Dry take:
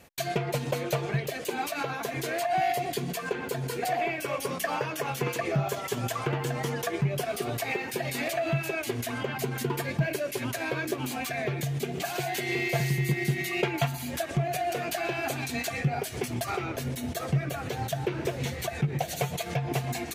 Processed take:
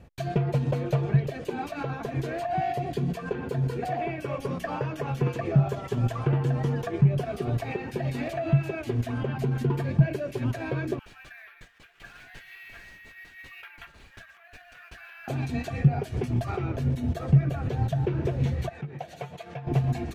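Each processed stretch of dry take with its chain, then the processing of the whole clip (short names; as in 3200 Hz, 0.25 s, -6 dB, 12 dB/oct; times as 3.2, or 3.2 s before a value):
10.99–15.28 ladder high-pass 1300 Hz, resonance 45% + careless resampling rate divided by 3×, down none, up hold
18.69–19.67 HPF 950 Hz 6 dB/oct + high shelf 3600 Hz -8 dB
whole clip: RIAA curve playback; notch 2100 Hz, Q 17; gain -3 dB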